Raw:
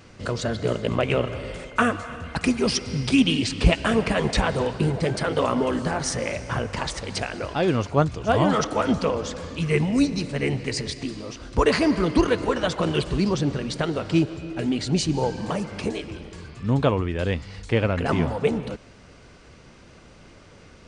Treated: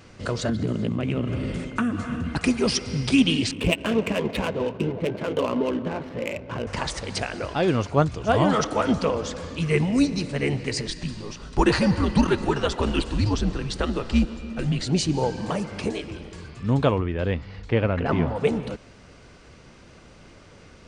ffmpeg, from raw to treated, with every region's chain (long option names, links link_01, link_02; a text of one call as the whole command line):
ffmpeg -i in.wav -filter_complex "[0:a]asettb=1/sr,asplit=3[link_01][link_02][link_03];[link_01]atrim=end=0.494[link_04];[link_02]atrim=start=0.49:end=2.37,asetpts=PTS-STARTPTS,afade=type=in:duration=0.004:curve=qsin,afade=type=out:start_time=1.876:duration=0.004:curve=qsin,lowshelf=frequency=370:width_type=q:width=1.5:gain=11.5,acompressor=threshold=-19dB:ratio=10:attack=3.2:release=140:knee=1:detection=peak,highpass=frequency=130:poles=1[link_05];[link_03]atrim=start=2.366[link_06];[link_04][link_05]acrossfade=duration=0.004:curve1=hsin:curve2=qsin[link_07];[link_07][link_06]acrossfade=duration=0.004:curve1=qsin:curve2=hsin,asettb=1/sr,asplit=3[link_08][link_09][link_10];[link_08]atrim=end=3.514[link_11];[link_09]atrim=start=3.51:end=6.67,asetpts=PTS-STARTPTS,afade=type=in:duration=0.004:curve=qsin,afade=type=out:start_time=3.156:duration=0.004:curve=qsin,highpass=110,equalizer=frequency=140:width_type=q:width=4:gain=-8,equalizer=frequency=770:width_type=q:width=4:gain=-8,equalizer=frequency=1300:width_type=q:width=4:gain=-8,equalizer=frequency=1800:width_type=q:width=4:gain=-8,equalizer=frequency=2700:width_type=q:width=4:gain=4,lowpass=frequency=3500:width=0.5412,lowpass=frequency=3500:width=1.3066,adynamicsmooth=sensitivity=4.5:basefreq=1100[link_12];[link_10]atrim=start=6.666[link_13];[link_11][link_12]acrossfade=duration=0.004:curve1=hsin:curve2=qsin[link_14];[link_14][link_13]acrossfade=duration=0.004:curve1=qsin:curve2=hsin,asettb=1/sr,asplit=3[link_15][link_16][link_17];[link_15]atrim=end=10.874[link_18];[link_16]atrim=start=10.87:end=14.82,asetpts=PTS-STARTPTS,afade=type=in:duration=0.004:curve=qsin,afade=type=out:start_time=3.946:duration=0.004:curve=qsin,bandreject=frequency=2300:width=15,afreqshift=-100[link_19];[link_17]atrim=start=14.816[link_20];[link_18][link_19]acrossfade=duration=0.004:curve1=hsin:curve2=qsin[link_21];[link_21][link_20]acrossfade=duration=0.004:curve1=qsin:curve2=hsin,asettb=1/sr,asplit=3[link_22][link_23][link_24];[link_22]atrim=end=16.984[link_25];[link_23]atrim=start=16.98:end=18.36,asetpts=PTS-STARTPTS,afade=type=in:duration=0.004:curve=qsin,afade=type=out:start_time=1.376:duration=0.004:curve=qsin,lowpass=4900,highshelf=frequency=3300:gain=-7.5[link_26];[link_24]atrim=start=18.356[link_27];[link_25][link_26]acrossfade=duration=0.004:curve1=hsin:curve2=qsin[link_28];[link_28][link_27]acrossfade=duration=0.004:curve1=qsin:curve2=hsin" out.wav